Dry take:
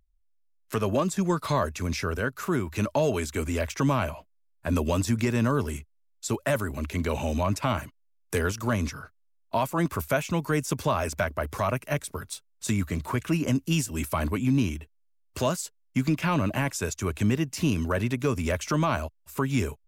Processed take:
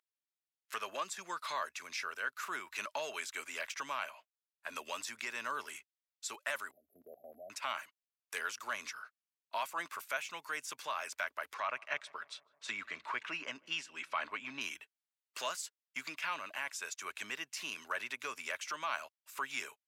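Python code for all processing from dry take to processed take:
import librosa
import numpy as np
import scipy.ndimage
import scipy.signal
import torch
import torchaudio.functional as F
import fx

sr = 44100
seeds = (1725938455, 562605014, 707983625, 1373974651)

y = fx.chain(x, sr, fx.brickwall_bandstop(low_hz=770.0, high_hz=11000.0),
    fx.level_steps(step_db=14), at=(6.71, 7.5))
y = fx.chain(y, sr, fx.lowpass(hz=3700.0, slope=12),
    fx.echo_filtered(ms=155, feedback_pct=73, hz=1400.0, wet_db=-24), at=(11.54, 14.61))
y = scipy.signal.sosfilt(scipy.signal.butter(2, 1400.0, 'highpass', fs=sr, output='sos'), y)
y = fx.rider(y, sr, range_db=3, speed_s=0.5)
y = fx.lowpass(y, sr, hz=3900.0, slope=6)
y = F.gain(torch.from_numpy(y), -1.5).numpy()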